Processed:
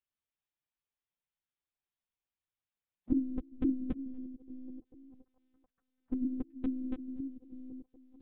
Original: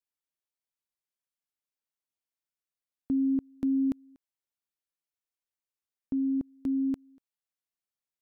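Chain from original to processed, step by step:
echo through a band-pass that steps 433 ms, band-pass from 180 Hz, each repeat 0.7 octaves, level −11 dB
one-pitch LPC vocoder at 8 kHz 210 Hz
phase-vocoder pitch shift with formants kept +3.5 semitones

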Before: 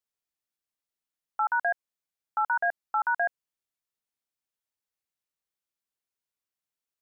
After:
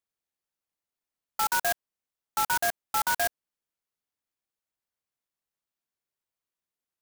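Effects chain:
converter with an unsteady clock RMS 0.083 ms

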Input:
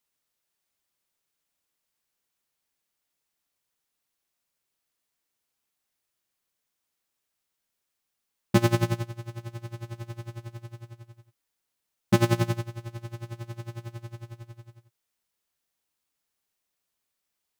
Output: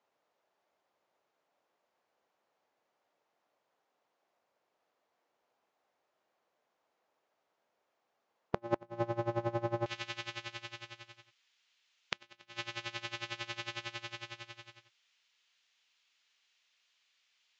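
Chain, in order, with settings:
downward compressor 16 to 1, threshold −31 dBFS, peak gain reduction 17.5 dB
resonant band-pass 650 Hz, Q 1.5, from 0:09.86 2,900 Hz
gate with flip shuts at −32 dBFS, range −28 dB
level +16 dB
Ogg Vorbis 96 kbit/s 16,000 Hz

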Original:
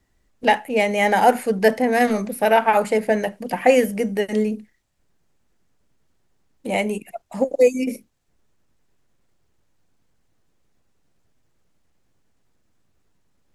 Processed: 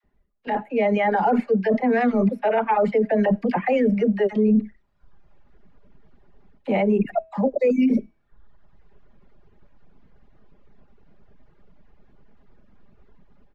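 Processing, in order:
high-shelf EQ 2,600 Hz −11.5 dB
comb filter 4.9 ms, depth 42%
all-pass dispersion lows, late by 40 ms, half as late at 640 Hz
reversed playback
downward compressor 6 to 1, threshold −29 dBFS, peak gain reduction 18.5 dB
reversed playback
high-frequency loss of the air 220 metres
hum removal 324 Hz, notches 40
reverb reduction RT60 1.1 s
brickwall limiter −28 dBFS, peak gain reduction 8 dB
automatic gain control gain up to 16 dB

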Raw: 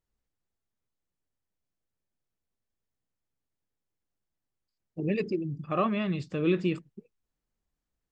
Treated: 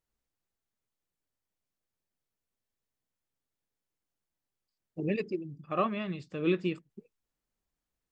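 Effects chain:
low-shelf EQ 210 Hz −5 dB
0:05.16–0:06.90: expander for the loud parts 1.5 to 1, over −37 dBFS

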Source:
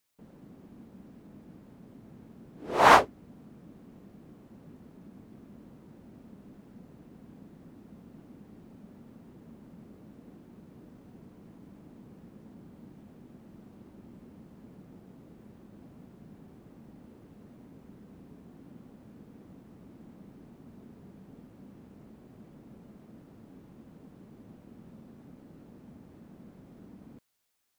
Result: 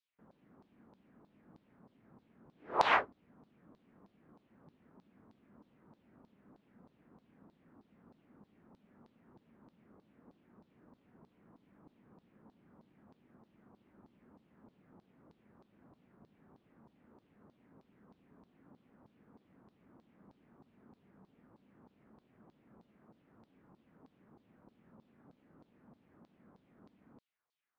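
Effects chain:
spectral tilt −4.5 dB per octave
auto-filter band-pass saw down 3.2 Hz 930–4,400 Hz
level +1.5 dB

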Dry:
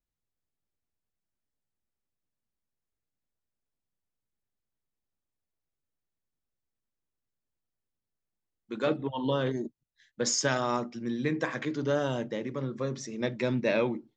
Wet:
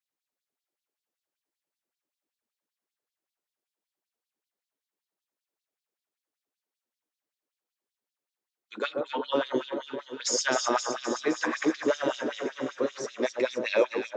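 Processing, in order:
delay that swaps between a low-pass and a high-pass 130 ms, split 1,300 Hz, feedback 84%, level −6 dB
auto-filter high-pass sine 5.2 Hz 300–4,200 Hz

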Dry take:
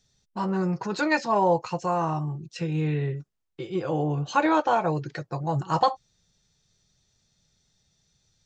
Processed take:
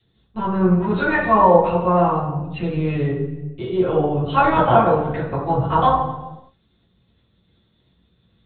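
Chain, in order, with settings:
linear-prediction vocoder at 8 kHz pitch kept
dynamic equaliser 230 Hz, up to −4 dB, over −39 dBFS, Q 0.94
convolution reverb RT60 1.0 s, pre-delay 3 ms, DRR −9.5 dB
level −4 dB

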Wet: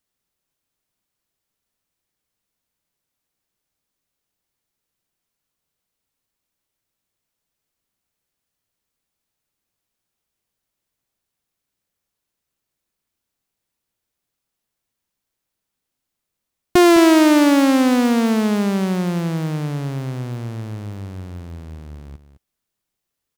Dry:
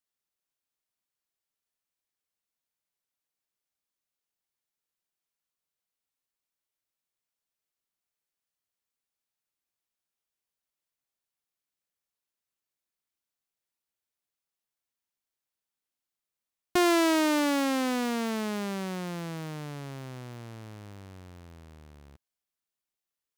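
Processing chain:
low-shelf EQ 370 Hz +9 dB
on a send: single-tap delay 209 ms −12 dB
on the sum: level +8 dB

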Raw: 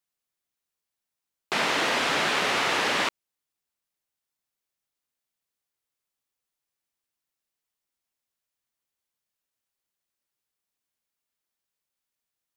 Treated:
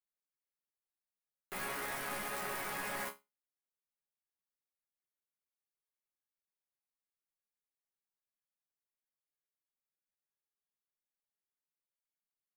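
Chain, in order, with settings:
wrap-around overflow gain 18.5 dB
flat-topped bell 4,500 Hz −9.5 dB
resonators tuned to a chord C#3 sus4, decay 0.22 s

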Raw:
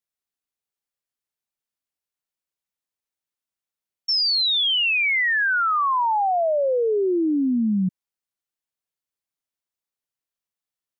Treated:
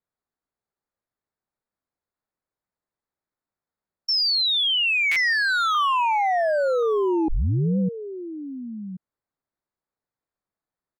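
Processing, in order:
adaptive Wiener filter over 15 samples
0:05.33–0:05.75: high-pass filter 1,400 Hz 12 dB per octave
brickwall limiter −26.5 dBFS, peak gain reduction 9 dB
single-tap delay 1,079 ms −12 dB
0:07.28: tape start 0.51 s
buffer that repeats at 0:05.11, samples 256, times 8
level +8 dB

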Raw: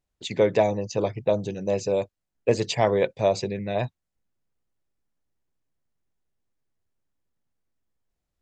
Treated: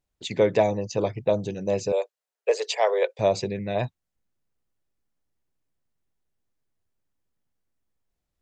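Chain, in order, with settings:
0:01.92–0:03.19: Butterworth high-pass 400 Hz 72 dB per octave

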